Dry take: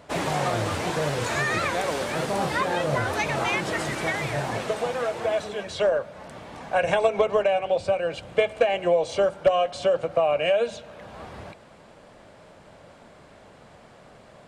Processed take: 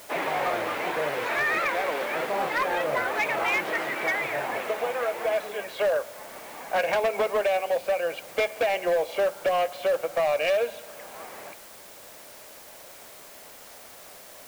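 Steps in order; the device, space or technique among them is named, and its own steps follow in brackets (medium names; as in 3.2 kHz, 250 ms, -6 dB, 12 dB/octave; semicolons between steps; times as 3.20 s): drive-through speaker (band-pass 380–2800 Hz; peaking EQ 2.2 kHz +5 dB 0.53 oct; hard clipper -19.5 dBFS, distortion -13 dB; white noise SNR 20 dB)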